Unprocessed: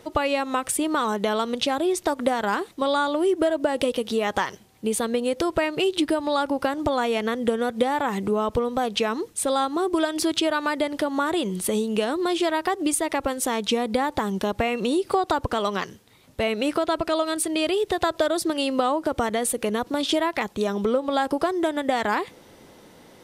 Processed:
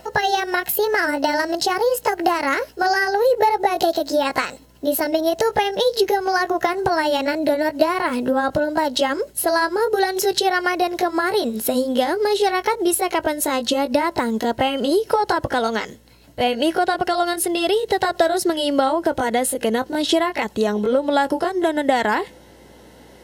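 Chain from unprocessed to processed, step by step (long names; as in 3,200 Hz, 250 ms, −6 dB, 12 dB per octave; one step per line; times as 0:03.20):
pitch glide at a constant tempo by +6 semitones ending unshifted
notch comb filter 1,200 Hz
mains hum 60 Hz, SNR 34 dB
level +6 dB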